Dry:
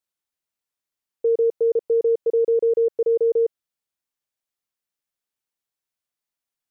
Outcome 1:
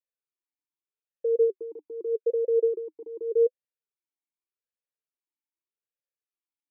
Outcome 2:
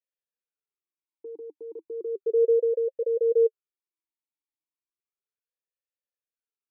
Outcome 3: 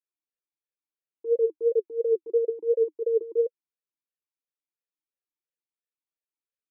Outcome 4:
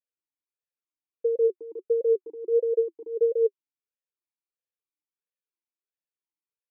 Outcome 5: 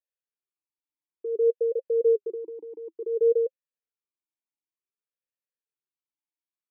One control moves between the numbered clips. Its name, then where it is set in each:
talking filter, rate: 0.83 Hz, 0.34 Hz, 2.9 Hz, 1.5 Hz, 0.56 Hz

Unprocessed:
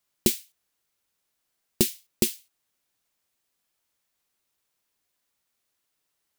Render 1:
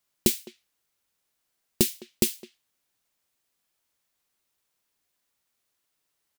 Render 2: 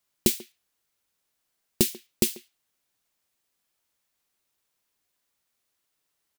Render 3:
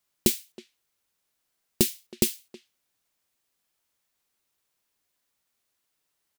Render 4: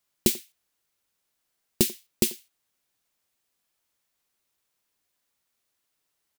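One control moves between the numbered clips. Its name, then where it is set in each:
speakerphone echo, time: 210 ms, 140 ms, 320 ms, 90 ms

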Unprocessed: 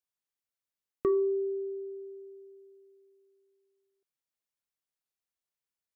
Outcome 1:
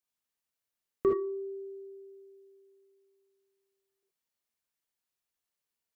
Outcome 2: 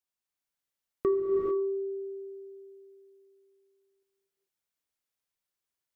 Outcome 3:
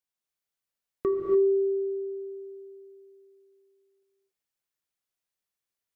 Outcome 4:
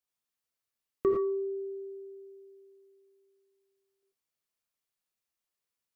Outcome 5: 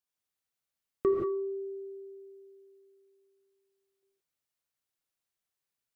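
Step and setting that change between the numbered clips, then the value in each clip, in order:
gated-style reverb, gate: 90 ms, 470 ms, 310 ms, 130 ms, 200 ms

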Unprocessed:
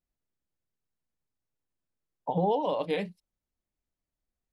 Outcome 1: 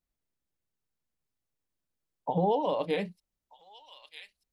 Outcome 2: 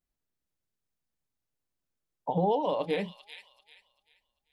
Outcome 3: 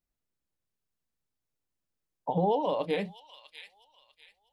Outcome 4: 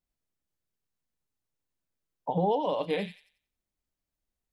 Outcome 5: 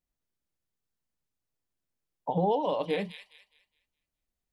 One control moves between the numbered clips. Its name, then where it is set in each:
feedback echo behind a high-pass, time: 1235 ms, 391 ms, 646 ms, 90 ms, 207 ms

